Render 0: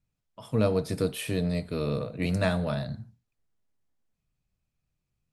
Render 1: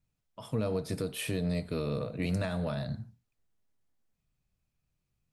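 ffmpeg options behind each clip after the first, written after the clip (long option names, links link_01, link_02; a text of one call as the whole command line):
ffmpeg -i in.wav -af "alimiter=limit=-22.5dB:level=0:latency=1:release=196" out.wav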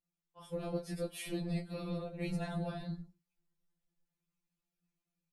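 ffmpeg -i in.wav -af "afftfilt=real='hypot(re,im)*cos(2*PI*random(0))':imag='hypot(re,im)*sin(2*PI*random(1))':win_size=512:overlap=0.75,dynaudnorm=framelen=290:gausssize=3:maxgain=4dB,afftfilt=real='re*2.83*eq(mod(b,8),0)':imag='im*2.83*eq(mod(b,8),0)':win_size=2048:overlap=0.75,volume=-2dB" out.wav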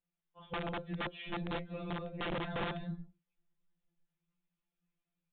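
ffmpeg -i in.wav -af "flanger=delay=3.8:depth=2.7:regen=72:speed=0.61:shape=triangular,aeval=exprs='(mod(59.6*val(0)+1,2)-1)/59.6':channel_layout=same,aresample=8000,aresample=44100,volume=4.5dB" out.wav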